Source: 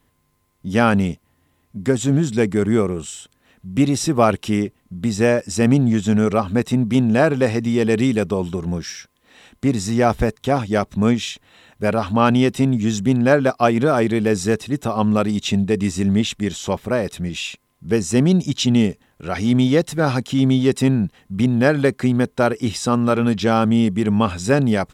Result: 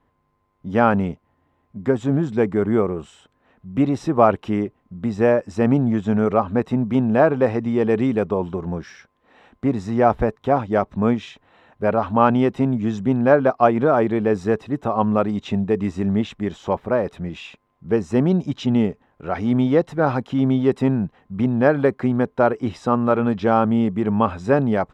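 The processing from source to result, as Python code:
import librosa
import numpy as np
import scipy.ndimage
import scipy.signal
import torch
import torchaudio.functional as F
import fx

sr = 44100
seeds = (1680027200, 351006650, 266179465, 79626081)

y = fx.curve_eq(x, sr, hz=(160.0, 950.0, 9800.0), db=(0, 7, -20))
y = y * librosa.db_to_amplitude(-4.0)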